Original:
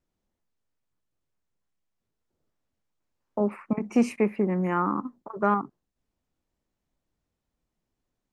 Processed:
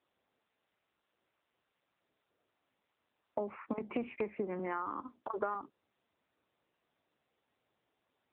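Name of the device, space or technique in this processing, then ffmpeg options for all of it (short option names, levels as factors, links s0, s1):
voicemail: -filter_complex "[0:a]asettb=1/sr,asplit=3[s0][s1][s2];[s0]atrim=end=4.594[s3];[s1]atrim=start=4.59:end=5.55,asetpts=PTS-STARTPTS,afade=t=in:d=0.004:c=qsin,afade=t=out:st=0.956:d=0.004:c=qsin,highpass=210[s4];[s2]atrim=start=5.546[s5];[s3][s4]acrossfade=d=0.004:c1=hsin:c2=qsin[s6];[s6][s5]acrossfade=d=0.004:c1=qsin:c2=hsin,highpass=350,lowpass=3000,acompressor=threshold=0.0158:ratio=8,volume=1.5" -ar 8000 -c:a libopencore_amrnb -b:a 7950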